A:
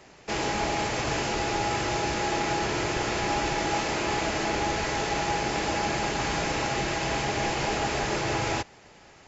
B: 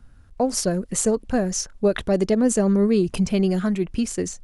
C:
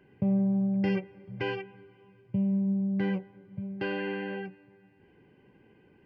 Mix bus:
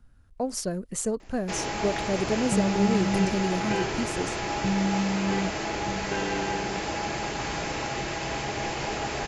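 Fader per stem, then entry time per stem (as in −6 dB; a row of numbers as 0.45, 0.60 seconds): −3.0, −7.5, +0.5 decibels; 1.20, 0.00, 2.30 seconds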